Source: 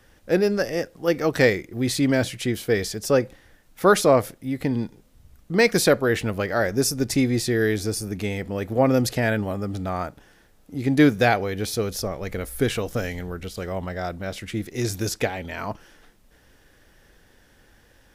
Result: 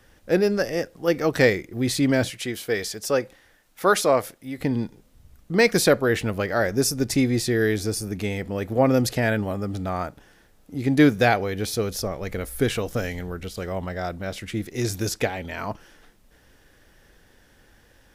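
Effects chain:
0:02.30–0:04.58: low-shelf EQ 320 Hz −10 dB

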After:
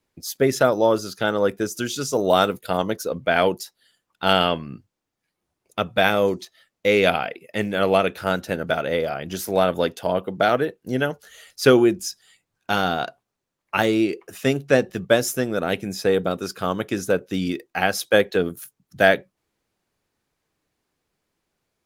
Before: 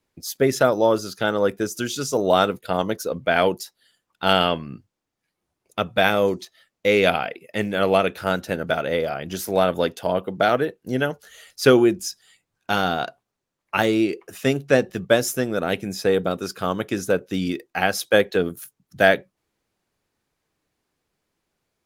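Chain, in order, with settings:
0:02.17–0:02.77: high-shelf EQ 9,900 Hz → 5,900 Hz +7.5 dB

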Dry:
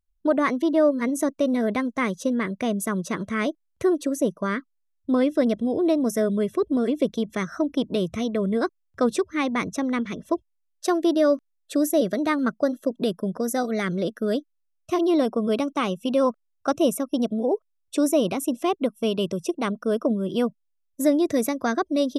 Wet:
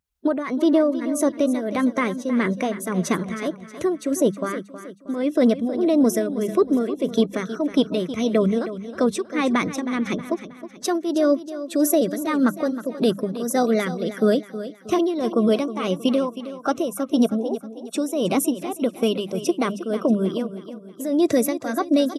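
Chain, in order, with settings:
spectral magnitudes quantised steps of 15 dB
high-pass filter 88 Hz
mains-hum notches 50/100/150/200 Hz
brickwall limiter −17 dBFS, peak gain reduction 7.5 dB
shaped tremolo triangle 1.7 Hz, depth 80%
on a send: repeating echo 317 ms, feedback 44%, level −13 dB
on the sum: level +8.5 dB

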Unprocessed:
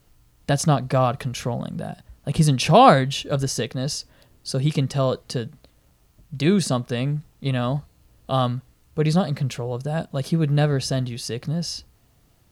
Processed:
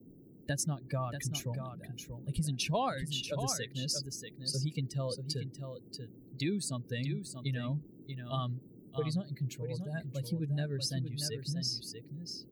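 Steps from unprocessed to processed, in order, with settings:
spectral dynamics exaggerated over time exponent 2
high-shelf EQ 5,200 Hz +8.5 dB
downward compressor 5 to 1, threshold −32 dBFS, peak gain reduction 19.5 dB
noise in a band 110–370 Hz −55 dBFS
on a send: single-tap delay 636 ms −8 dB

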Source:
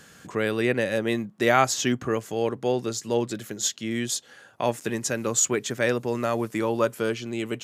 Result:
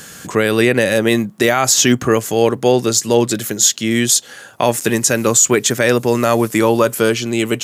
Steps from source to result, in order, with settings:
high-shelf EQ 6,000 Hz +10.5 dB
boost into a limiter +13 dB
level −1 dB

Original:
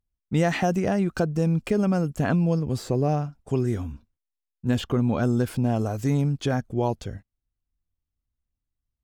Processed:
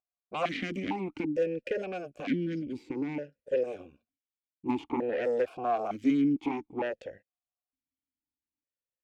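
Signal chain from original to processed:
harmonic generator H 6 −8 dB, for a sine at −9.5 dBFS
in parallel at −2.5 dB: brickwall limiter −17.5 dBFS, peak gain reduction 9 dB
on the sum: gain on a spectral selection 0:01.17–0:04.07, 620–1,400 Hz −13 dB
formant filter that steps through the vowels 2.2 Hz

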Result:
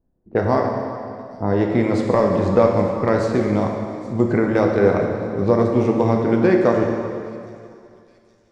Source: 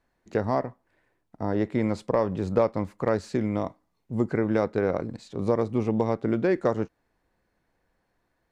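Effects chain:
low-pass that shuts in the quiet parts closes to 350 Hz, open at −21.5 dBFS
delay with a high-pass on its return 818 ms, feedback 56%, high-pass 5,100 Hz, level −14.5 dB
dense smooth reverb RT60 2.4 s, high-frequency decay 0.9×, DRR 0.5 dB
level +6 dB

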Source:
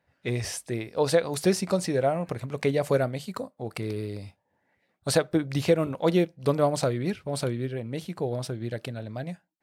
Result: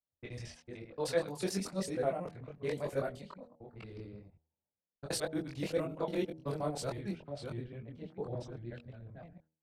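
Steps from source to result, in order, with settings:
reversed piece by piece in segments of 75 ms
low-pass that shuts in the quiet parts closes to 670 Hz, open at −23 dBFS
multi-voice chorus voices 6, 1 Hz, delay 23 ms, depth 3.4 ms
hum removal 79.51 Hz, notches 11
multiband upward and downward expander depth 40%
level −8 dB

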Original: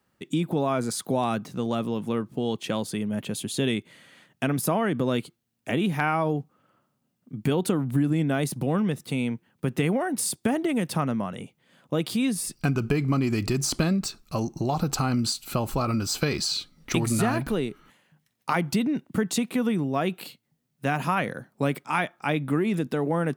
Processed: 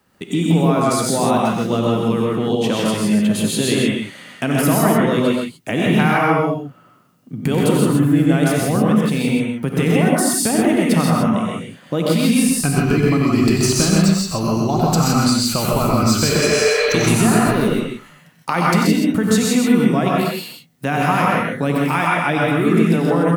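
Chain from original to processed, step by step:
healed spectral selection 0:16.32–0:16.88, 420–4,800 Hz before
in parallel at +3 dB: downward compressor, threshold −36 dBFS, peak gain reduction 16.5 dB
on the sum: multi-tap delay 92/129 ms −8.5/−5 dB
reverb whose tail is shaped and stops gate 190 ms rising, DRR −2 dB
level +2 dB

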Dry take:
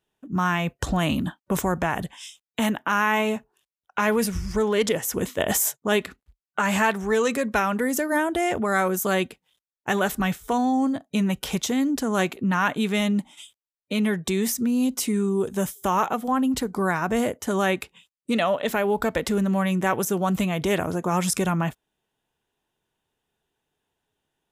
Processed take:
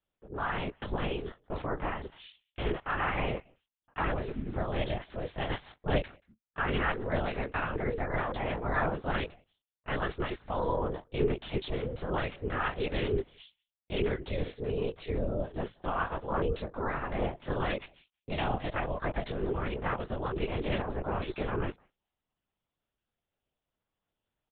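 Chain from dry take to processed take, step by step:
far-end echo of a speakerphone 180 ms, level −27 dB
multi-voice chorus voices 4, 0.15 Hz, delay 22 ms, depth 3.1 ms
ring modulation 200 Hz
linear-prediction vocoder at 8 kHz whisper
level −3 dB

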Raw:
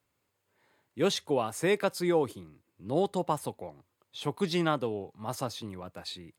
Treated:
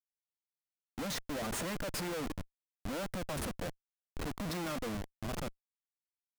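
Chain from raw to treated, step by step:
fade-out on the ending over 1.94 s
phaser with its sweep stopped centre 600 Hz, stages 8
comparator with hysteresis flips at −42.5 dBFS

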